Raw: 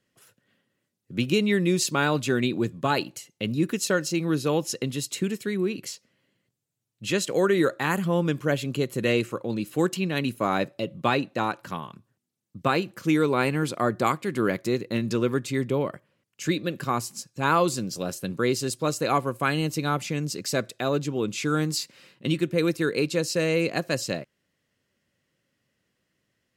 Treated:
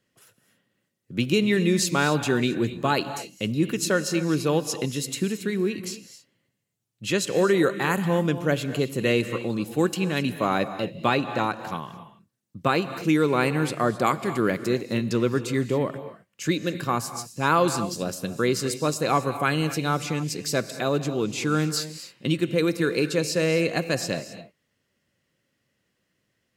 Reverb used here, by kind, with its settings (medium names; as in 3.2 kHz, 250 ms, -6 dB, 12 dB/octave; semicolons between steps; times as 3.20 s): gated-style reverb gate 290 ms rising, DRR 11 dB; trim +1 dB